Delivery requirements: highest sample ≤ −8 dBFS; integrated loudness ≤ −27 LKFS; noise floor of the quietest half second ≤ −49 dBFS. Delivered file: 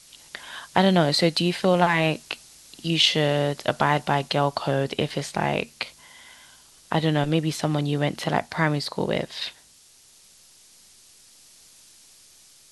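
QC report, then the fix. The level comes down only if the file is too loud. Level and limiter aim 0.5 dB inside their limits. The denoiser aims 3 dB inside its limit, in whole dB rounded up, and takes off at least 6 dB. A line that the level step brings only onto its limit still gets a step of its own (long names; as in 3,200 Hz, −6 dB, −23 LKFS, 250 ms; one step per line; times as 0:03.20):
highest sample −3.0 dBFS: out of spec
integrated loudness −23.5 LKFS: out of spec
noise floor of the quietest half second −54 dBFS: in spec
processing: level −4 dB
brickwall limiter −8.5 dBFS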